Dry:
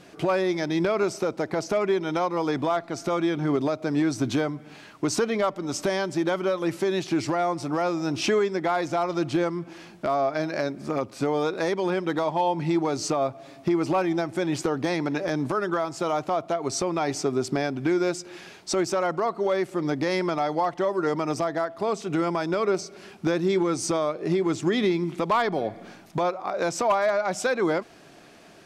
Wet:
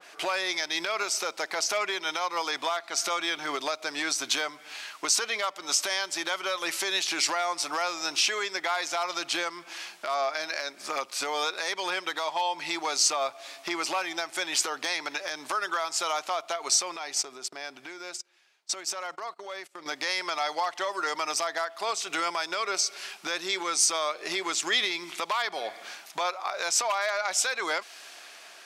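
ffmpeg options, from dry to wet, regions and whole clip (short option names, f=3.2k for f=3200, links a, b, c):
-filter_complex "[0:a]asettb=1/sr,asplit=3[a][b][c];[a]atrim=end=16.964[d];[b]atrim=start=16.96:end=19.86,asetpts=PTS-STARTPTS,afade=t=in:d=0.004:c=qsin,afade=t=out:st=2.896:d=0.004:c=qsin,agate=range=-27dB:threshold=-34dB:ratio=16:release=100:detection=peak,lowshelf=f=410:g=5.5,acompressor=threshold=-34dB:ratio=4:attack=3.2:release=140:knee=1:detection=peak[e];[c]atrim=start=19.856[f];[d][e]acrossfade=d=0.004:c1=hsin:c2=qsin[g];[g][f]acrossfade=d=0.004:c1=qsin:c2=hsin,highpass=980,alimiter=level_in=1.5dB:limit=-24dB:level=0:latency=1:release=283,volume=-1.5dB,adynamicequalizer=threshold=0.00251:dfrequency=2200:dqfactor=0.7:tfrequency=2200:tqfactor=0.7:attack=5:release=100:ratio=0.375:range=4:mode=boostabove:tftype=highshelf,volume=5.5dB"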